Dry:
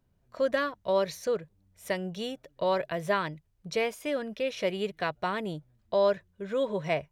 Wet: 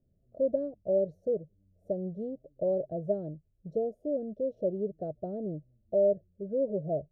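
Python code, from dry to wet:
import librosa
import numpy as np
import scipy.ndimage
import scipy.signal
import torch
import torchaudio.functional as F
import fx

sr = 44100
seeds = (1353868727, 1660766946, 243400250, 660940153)

y = scipy.signal.sosfilt(scipy.signal.ellip(4, 1.0, 40, 640.0, 'lowpass', fs=sr, output='sos'), x)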